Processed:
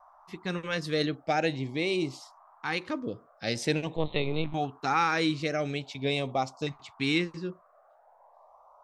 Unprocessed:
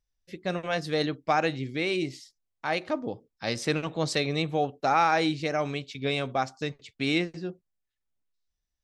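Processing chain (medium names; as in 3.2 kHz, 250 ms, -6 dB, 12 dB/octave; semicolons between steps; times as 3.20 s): 3.96–4.54 s: LPC vocoder at 8 kHz pitch kept; band noise 590–1200 Hz -55 dBFS; LFO notch saw up 0.45 Hz 460–1900 Hz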